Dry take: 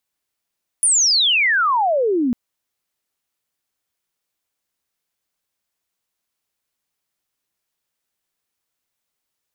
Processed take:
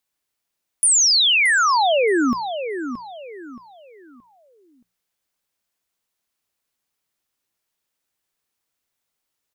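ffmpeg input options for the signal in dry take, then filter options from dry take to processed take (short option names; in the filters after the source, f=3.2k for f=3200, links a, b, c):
-f lavfi -i "aevalsrc='pow(10,(-12-3.5*t/1.5)/20)*sin(2*PI*10000*1.5/log(230/10000)*(exp(log(230/10000)*t/1.5)-1))':d=1.5:s=44100"
-filter_complex "[0:a]bandreject=f=60:t=h:w=6,bandreject=f=120:t=h:w=6,bandreject=f=180:t=h:w=6,asplit=2[a][b];[b]adelay=624,lowpass=f=4.3k:p=1,volume=-9dB,asplit=2[c][d];[d]adelay=624,lowpass=f=4.3k:p=1,volume=0.33,asplit=2[e][f];[f]adelay=624,lowpass=f=4.3k:p=1,volume=0.33,asplit=2[g][h];[h]adelay=624,lowpass=f=4.3k:p=1,volume=0.33[i];[a][c][e][g][i]amix=inputs=5:normalize=0"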